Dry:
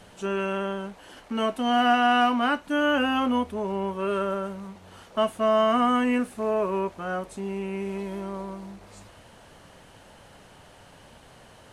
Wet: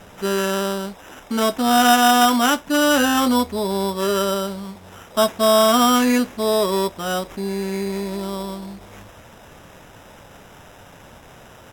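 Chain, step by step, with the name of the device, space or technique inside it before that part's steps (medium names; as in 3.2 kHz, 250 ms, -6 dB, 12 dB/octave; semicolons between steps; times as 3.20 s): crushed at another speed (playback speed 1.25×; sample-and-hold 8×; playback speed 0.8×); trim +6.5 dB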